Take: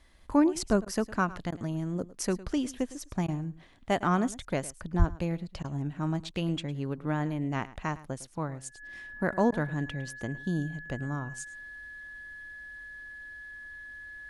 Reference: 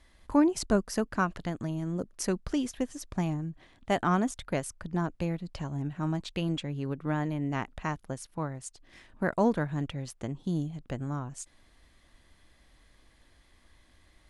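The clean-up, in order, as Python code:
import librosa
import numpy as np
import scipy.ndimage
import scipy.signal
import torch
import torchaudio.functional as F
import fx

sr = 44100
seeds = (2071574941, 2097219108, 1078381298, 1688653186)

y = fx.notch(x, sr, hz=1700.0, q=30.0)
y = fx.highpass(y, sr, hz=140.0, slope=24, at=(4.98, 5.1), fade=0.02)
y = fx.fix_interpolate(y, sr, at_s=(0.85, 1.51, 3.27, 5.63, 9.51), length_ms=11.0)
y = fx.fix_echo_inverse(y, sr, delay_ms=107, level_db=-18.0)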